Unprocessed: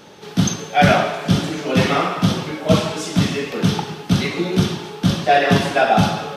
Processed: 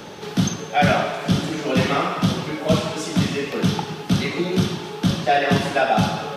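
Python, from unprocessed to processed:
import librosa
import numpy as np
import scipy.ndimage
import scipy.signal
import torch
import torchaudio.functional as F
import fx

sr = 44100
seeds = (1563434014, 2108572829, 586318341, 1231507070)

y = fx.band_squash(x, sr, depth_pct=40)
y = y * 10.0 ** (-3.0 / 20.0)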